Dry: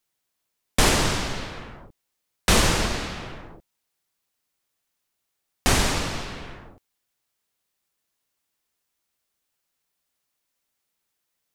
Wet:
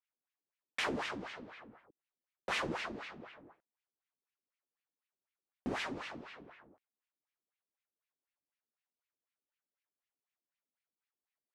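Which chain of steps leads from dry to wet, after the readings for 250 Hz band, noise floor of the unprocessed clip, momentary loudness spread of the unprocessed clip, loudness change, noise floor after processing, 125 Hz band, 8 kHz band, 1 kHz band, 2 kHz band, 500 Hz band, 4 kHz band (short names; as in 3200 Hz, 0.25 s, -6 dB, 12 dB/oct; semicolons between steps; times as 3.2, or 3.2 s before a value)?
-14.5 dB, -79 dBFS, 19 LU, -16.5 dB, under -85 dBFS, -24.0 dB, -28.0 dB, -14.5 dB, -13.0 dB, -14.5 dB, -18.5 dB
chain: LFO band-pass sine 4 Hz 240–2500 Hz; gain -6.5 dB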